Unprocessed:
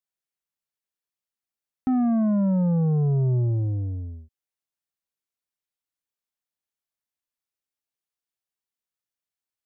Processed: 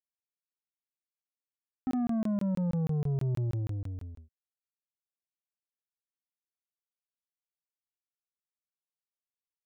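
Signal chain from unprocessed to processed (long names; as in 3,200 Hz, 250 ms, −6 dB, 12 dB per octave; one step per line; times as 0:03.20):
running median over 41 samples
regular buffer underruns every 0.16 s, samples 1,024, zero, from 0:00.31
level −8 dB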